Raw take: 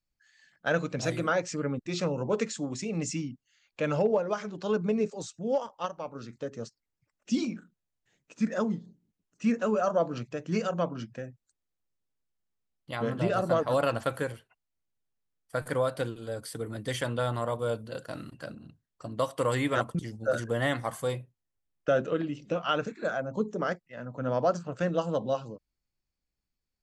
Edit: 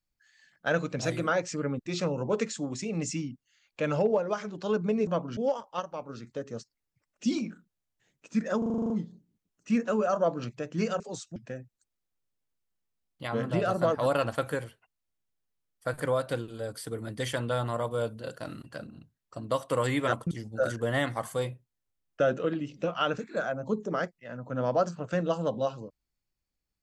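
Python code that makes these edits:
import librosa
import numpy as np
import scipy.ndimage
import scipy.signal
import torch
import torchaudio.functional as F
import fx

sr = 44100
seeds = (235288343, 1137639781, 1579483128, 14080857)

y = fx.edit(x, sr, fx.swap(start_s=5.07, length_s=0.36, other_s=10.74, other_length_s=0.3),
    fx.stutter(start_s=8.64, slice_s=0.04, count=9), tone=tone)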